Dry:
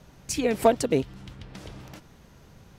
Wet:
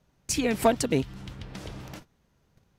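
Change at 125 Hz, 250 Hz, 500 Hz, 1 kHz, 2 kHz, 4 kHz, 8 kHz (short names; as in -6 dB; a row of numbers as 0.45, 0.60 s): +1.5, +0.5, -3.0, -1.5, +1.5, +2.0, +2.0 dB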